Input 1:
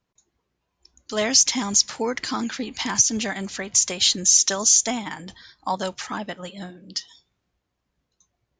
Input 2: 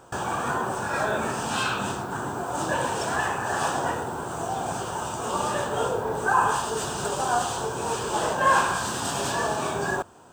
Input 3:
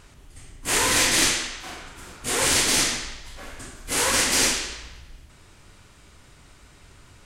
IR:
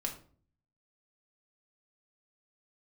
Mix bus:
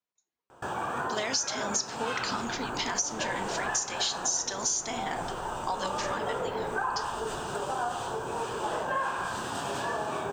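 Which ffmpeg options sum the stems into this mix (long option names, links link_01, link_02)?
-filter_complex "[0:a]agate=range=-11dB:threshold=-41dB:ratio=16:detection=peak,highpass=frequency=650:poles=1,volume=-6dB,asplit=2[link_01][link_02];[link_02]volume=-3.5dB[link_03];[1:a]bass=frequency=250:gain=-4,treble=frequency=4000:gain=-8,adelay=500,volume=-3.5dB[link_04];[2:a]lowpass=1200,acompressor=threshold=-33dB:ratio=6,adelay=2200,volume=-6.5dB[link_05];[3:a]atrim=start_sample=2205[link_06];[link_03][link_06]afir=irnorm=-1:irlink=0[link_07];[link_01][link_04][link_05][link_07]amix=inputs=4:normalize=0,acompressor=threshold=-27dB:ratio=6"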